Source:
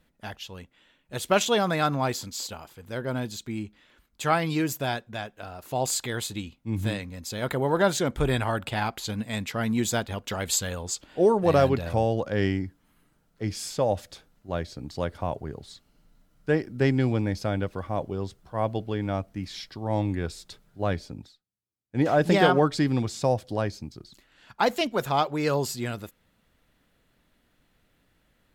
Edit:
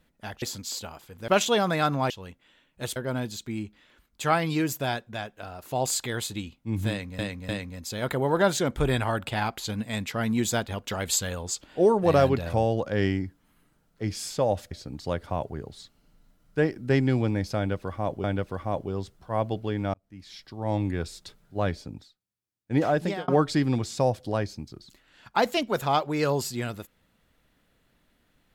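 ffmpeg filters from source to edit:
-filter_complex "[0:a]asplit=11[a][b][c][d][e][f][g][h][i][j][k];[a]atrim=end=0.422[l];[b]atrim=start=2.098:end=2.962[m];[c]atrim=start=1.278:end=2.102[n];[d]atrim=start=0.418:end=1.282[o];[e]atrim=start=2.958:end=7.192[p];[f]atrim=start=6.888:end=7.192[q];[g]atrim=start=6.888:end=14.112[r];[h]atrim=start=14.618:end=18.152[s];[i]atrim=start=17.478:end=19.18,asetpts=PTS-STARTPTS,afade=t=out:st=1.698:d=0.004:c=hsin[t];[j]atrim=start=19.18:end=22.52,asetpts=PTS-STARTPTS,afade=t=in:d=0.88,afade=t=out:st=2.87:d=0.47[u];[k]atrim=start=22.52,asetpts=PTS-STARTPTS,afade=t=in:d=0.004:c=hsin[v];[l][m]acrossfade=d=0.004:c1=hsin:c2=hsin[w];[w][n]acrossfade=d=0.004:c1=hsin:c2=hsin[x];[x][o]acrossfade=d=0.004:c1=hsin:c2=hsin[y];[y][p]acrossfade=d=0.004:c1=hsin:c2=hsin[z];[z][q]acrossfade=d=0.004:c1=hsin:c2=hsin[aa];[aa][r]acrossfade=d=0.004:c1=hsin:c2=hsin[ab];[ab][s]acrossfade=d=0.004:c1=hsin:c2=hsin[ac];[t][u][v]concat=n=3:v=0:a=1[ad];[ac][ad]acrossfade=d=0.004:c1=hsin:c2=hsin"

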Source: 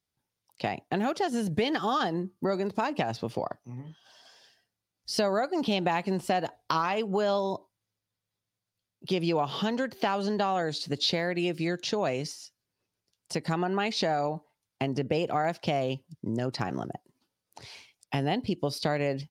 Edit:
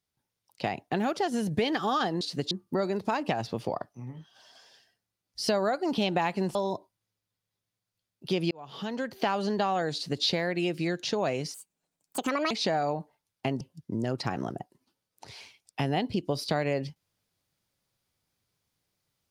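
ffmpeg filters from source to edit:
-filter_complex "[0:a]asplit=8[a][b][c][d][e][f][g][h];[a]atrim=end=2.212[i];[b]atrim=start=10.738:end=11.042[j];[c]atrim=start=2.208:end=6.252[k];[d]atrim=start=7.348:end=9.31,asetpts=PTS-STARTPTS,afade=t=out:st=1.958:d=0.004:c=hsin[l];[e]atrim=start=9.31:end=12.344,asetpts=PTS-STARTPTS,afade=t=in:d=0.7[m];[f]atrim=start=12.34:end=13.87,asetpts=PTS-STARTPTS,asetrate=69678,aresample=44100,atrim=end_sample=42704,asetpts=PTS-STARTPTS[n];[g]atrim=start=13.866:end=14.972[o];[h]atrim=start=15.948[p];[i][j]acrossfade=d=0.004:c1=hsin:c2=hsin[q];[q][k]acrossfade=d=0.004:c1=hsin:c2=hsin[r];[l][m]concat=n=2:v=0:a=1[s];[r][s]acrossfade=d=0.004:c1=hsin:c2=hsin[t];[t][n]acrossfade=d=0.004:c1=hsin:c2=hsin[u];[u][o]acrossfade=d=0.004:c1=hsin:c2=hsin[v];[v][p]acrossfade=d=0.004:c1=hsin:c2=hsin"

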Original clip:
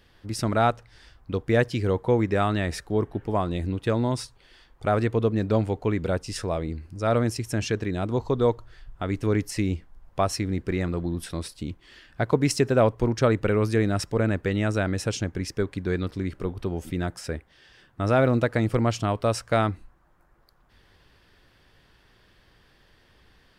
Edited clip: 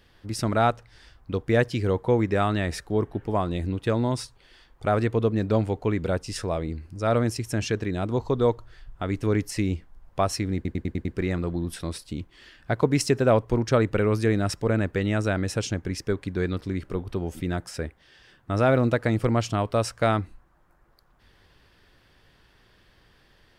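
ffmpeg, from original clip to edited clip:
-filter_complex "[0:a]asplit=6[a][b][c][d][e][f];[a]atrim=end=10.652[g];[b]atrim=start=10.548:end=10.652[h];[c]atrim=start=10.548:end=10.652[i];[d]atrim=start=10.548:end=10.652[j];[e]atrim=start=10.548:end=10.652[k];[f]atrim=start=10.548[l];[g][h]acrossfade=d=0.004:c1=hsin:c2=hsin[m];[m][i]acrossfade=d=0.004:c1=hsin:c2=hsin[n];[n][j]acrossfade=d=0.004:c1=hsin:c2=hsin[o];[o][k]acrossfade=d=0.004:c1=hsin:c2=hsin[p];[p][l]acrossfade=d=0.004:c1=hsin:c2=hsin"

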